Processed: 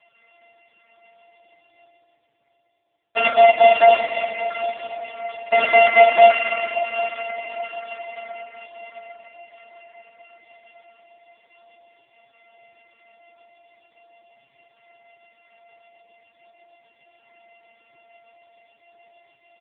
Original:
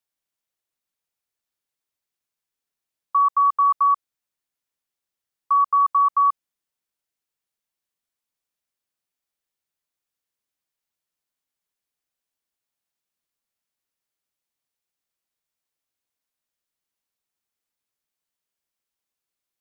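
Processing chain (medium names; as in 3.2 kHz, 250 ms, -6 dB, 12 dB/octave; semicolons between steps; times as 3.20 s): sorted samples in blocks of 64 samples; band-stop 1.2 kHz, Q 10; gate with hold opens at -16 dBFS; comb 6.2 ms, depth 61%; reverse; upward compressor, threshold -21 dBFS; reverse; flange 0.41 Hz, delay 7.6 ms, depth 2.9 ms, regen -6%; echo that smears into a reverb 814 ms, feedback 51%, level -13 dB; on a send at -1 dB: reverberation RT60 3.0 s, pre-delay 40 ms; on the sum: trim +8 dB; AMR-NB 4.75 kbps 8 kHz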